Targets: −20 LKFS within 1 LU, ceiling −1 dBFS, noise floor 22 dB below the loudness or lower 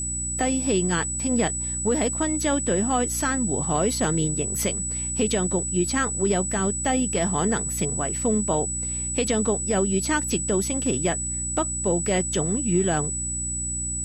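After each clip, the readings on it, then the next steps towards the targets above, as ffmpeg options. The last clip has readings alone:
mains hum 60 Hz; hum harmonics up to 300 Hz; level of the hum −32 dBFS; interfering tone 7,900 Hz; level of the tone −27 dBFS; integrated loudness −23.5 LKFS; sample peak −10.0 dBFS; target loudness −20.0 LKFS
→ -af "bandreject=frequency=60:width_type=h:width=6,bandreject=frequency=120:width_type=h:width=6,bandreject=frequency=180:width_type=h:width=6,bandreject=frequency=240:width_type=h:width=6,bandreject=frequency=300:width_type=h:width=6"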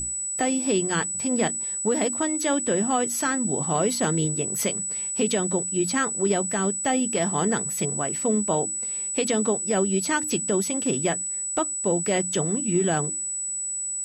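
mains hum none found; interfering tone 7,900 Hz; level of the tone −27 dBFS
→ -af "bandreject=frequency=7900:width=30"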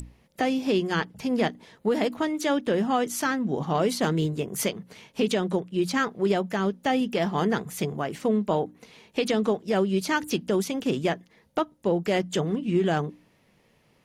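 interfering tone none found; integrated loudness −26.5 LKFS; sample peak −12.5 dBFS; target loudness −20.0 LKFS
→ -af "volume=6.5dB"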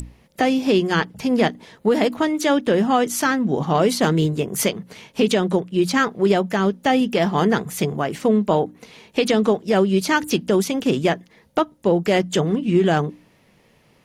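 integrated loudness −20.0 LKFS; sample peak −6.0 dBFS; background noise floor −57 dBFS

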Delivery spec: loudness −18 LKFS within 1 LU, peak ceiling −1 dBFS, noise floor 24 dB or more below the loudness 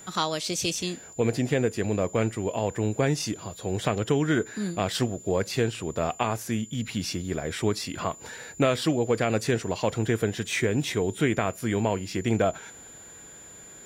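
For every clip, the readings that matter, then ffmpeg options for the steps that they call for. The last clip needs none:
interfering tone 7,100 Hz; level of the tone −45 dBFS; integrated loudness −27.5 LKFS; sample peak −10.0 dBFS; target loudness −18.0 LKFS
→ -af "bandreject=frequency=7100:width=30"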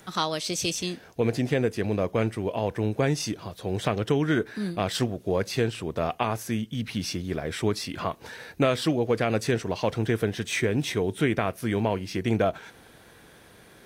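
interfering tone none found; integrated loudness −27.5 LKFS; sample peak −9.5 dBFS; target loudness −18.0 LKFS
→ -af "volume=9.5dB,alimiter=limit=-1dB:level=0:latency=1"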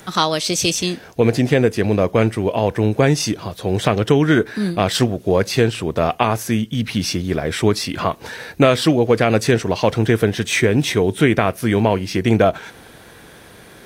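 integrated loudness −18.0 LKFS; sample peak −1.0 dBFS; background noise floor −43 dBFS

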